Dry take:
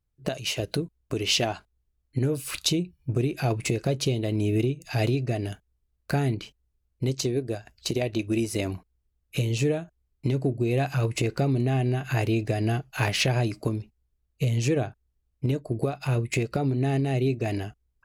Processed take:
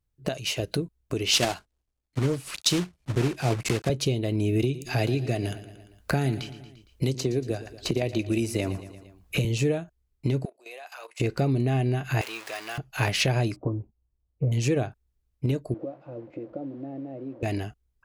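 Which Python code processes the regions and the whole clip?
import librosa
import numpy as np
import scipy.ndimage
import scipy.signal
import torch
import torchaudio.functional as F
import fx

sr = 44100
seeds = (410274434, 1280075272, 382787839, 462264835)

y = fx.chain(x, sr, fx.block_float(bits=3),
    fx.lowpass(hz=9800.0, slope=12),
    fx.band_widen(depth_pct=40), at=(1.31, 3.9))
y = fx.chain(y, sr, fx.echo_feedback(ms=115, feedback_pct=46, wet_db=-16.0),
    fx.band_squash(depth_pct=70), at=(4.62, 9.45))
y = fx.chain(y, sr, fx.highpass(hz=640.0, slope=24),
    fx.level_steps(step_db=14), at=(10.45, 11.2))
y = fx.chain(y, sr, fx.zero_step(step_db=-29.0),
    fx.highpass(hz=1000.0, slope=12),
    fx.peak_eq(hz=12000.0, db=-4.0, octaves=1.4), at=(12.21, 12.78))
y = fx.chain(y, sr, fx.lowpass(hz=1100.0, slope=24),
    fx.notch_comb(f0_hz=210.0), at=(13.56, 14.52))
y = fx.chain(y, sr, fx.delta_mod(bps=64000, step_db=-30.0),
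    fx.double_bandpass(hz=410.0, octaves=0.71),
    fx.air_absorb(metres=160.0), at=(15.74, 17.43))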